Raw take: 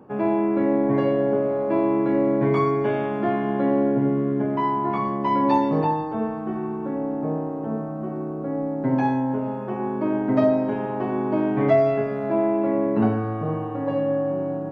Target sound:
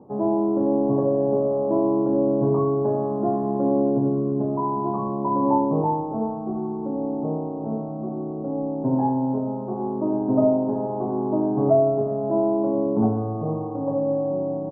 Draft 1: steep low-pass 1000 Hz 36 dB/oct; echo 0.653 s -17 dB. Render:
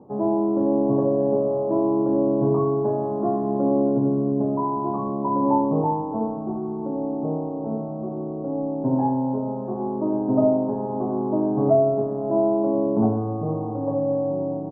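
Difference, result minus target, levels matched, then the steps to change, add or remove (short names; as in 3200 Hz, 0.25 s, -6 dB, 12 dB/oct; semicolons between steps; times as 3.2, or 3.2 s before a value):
echo 0.276 s late
change: echo 0.377 s -17 dB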